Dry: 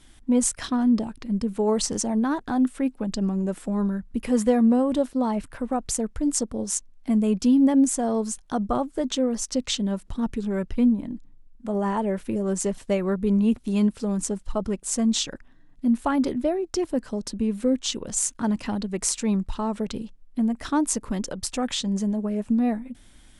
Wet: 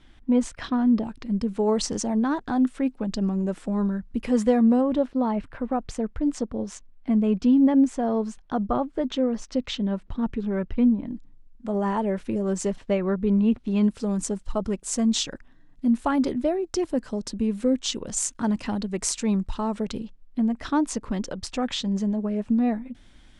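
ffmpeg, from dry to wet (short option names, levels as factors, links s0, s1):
-af "asetnsamples=n=441:p=0,asendcmd='1.05 lowpass f 6400;4.81 lowpass f 3100;11.07 lowpass f 6500;12.76 lowpass f 3500;13.84 lowpass f 8600;19.99 lowpass f 5200',lowpass=3400"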